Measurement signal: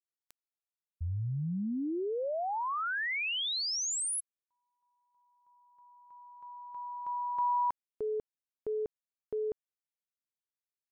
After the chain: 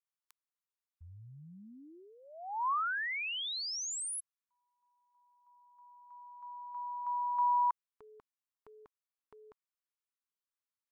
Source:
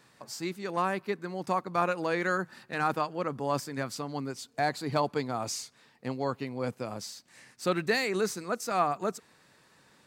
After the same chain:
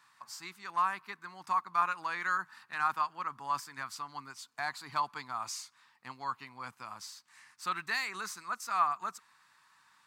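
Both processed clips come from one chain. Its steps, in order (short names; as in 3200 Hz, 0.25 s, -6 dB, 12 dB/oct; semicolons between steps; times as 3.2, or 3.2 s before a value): resonant low shelf 730 Hz -12.5 dB, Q 3; gain -5 dB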